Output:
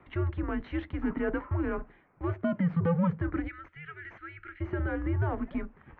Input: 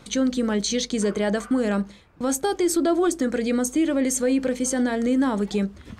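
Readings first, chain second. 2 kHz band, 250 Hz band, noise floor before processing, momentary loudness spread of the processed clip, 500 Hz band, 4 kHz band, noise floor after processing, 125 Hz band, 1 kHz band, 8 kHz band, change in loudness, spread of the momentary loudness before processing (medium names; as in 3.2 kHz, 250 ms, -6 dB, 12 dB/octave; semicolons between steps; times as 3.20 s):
-6.5 dB, -10.5 dB, -49 dBFS, 16 LU, -11.5 dB, under -20 dB, -60 dBFS, no reading, -8.0 dB, under -40 dB, -8.5 dB, 4 LU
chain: time-frequency box 3.48–4.60 s, 210–1400 Hz -24 dB; Chebyshev shaper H 2 -20 dB, 6 -29 dB, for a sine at -13.5 dBFS; mistuned SSB -170 Hz 260–2400 Hz; trim -5 dB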